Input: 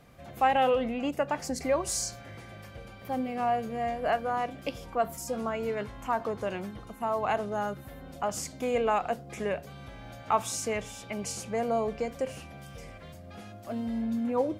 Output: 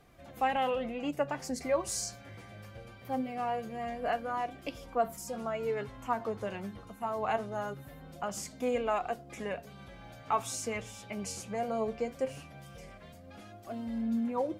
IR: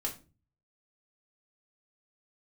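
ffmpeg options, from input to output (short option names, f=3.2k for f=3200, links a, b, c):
-af "flanger=delay=2.5:depth=8.3:regen=43:speed=0.22:shape=triangular"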